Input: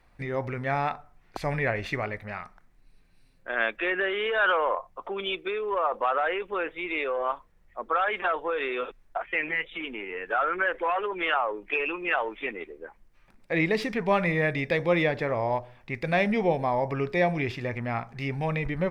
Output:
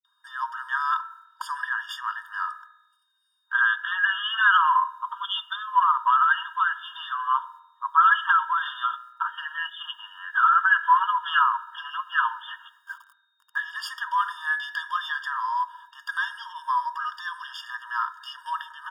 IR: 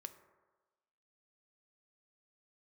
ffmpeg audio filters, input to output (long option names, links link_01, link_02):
-filter_complex "[0:a]agate=range=-12dB:threshold=-52dB:ratio=16:detection=peak,bass=frequency=250:gain=11,treble=frequency=4000:gain=7,bandreject=frequency=50:width_type=h:width=6,bandreject=frequency=100:width_type=h:width=6,bandreject=frequency=150:width_type=h:width=6,bandreject=frequency=200:width_type=h:width=6,bandreject=frequency=250:width_type=h:width=6,bandreject=frequency=300:width_type=h:width=6,aecho=1:1:3.1:0.49,asettb=1/sr,asplit=3[link_01][link_02][link_03];[link_01]atrim=end=12.824[link_04];[link_02]atrim=start=12.82:end=13.53,asetpts=PTS-STARTPTS,afade=type=in:duration=0.004:curve=qsin,afade=type=out:start_time=0.706:duration=0.004:curve=qsin,aeval=exprs='val(0)*gte(abs(val(0)),0.00447)':channel_layout=same[link_05];[link_03]atrim=start=13.526[link_06];[link_04][link_05]acrossfade=duration=0.004:curve1=hsin:curve2=qsin[link_07];[link_07][link_06]acrossfade=duration=0.004:curve1=qsin:curve2=hsin,aeval=exprs='val(0)+0.00158*sin(2*PI*3700*n/s)':channel_layout=same,acrossover=split=340[link_08][link_09];[link_09]adelay=50[link_10];[link_08][link_10]amix=inputs=2:normalize=0,alimiter=limit=-17dB:level=0:latency=1:release=144,asplit=2[link_11][link_12];[1:a]atrim=start_sample=2205,asetrate=66150,aresample=44100,lowpass=2600[link_13];[link_12][link_13]afir=irnorm=-1:irlink=0,volume=10dB[link_14];[link_11][link_14]amix=inputs=2:normalize=0,afftfilt=real='re*eq(mod(floor(b*sr/1024/920),2),1)':imag='im*eq(mod(floor(b*sr/1024/920),2),1)':win_size=1024:overlap=0.75,volume=4dB"